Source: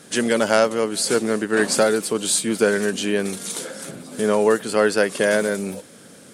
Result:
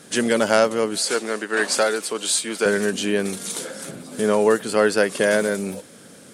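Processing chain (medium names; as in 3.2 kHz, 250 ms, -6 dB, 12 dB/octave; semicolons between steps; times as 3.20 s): 0.98–2.66 s: frequency weighting A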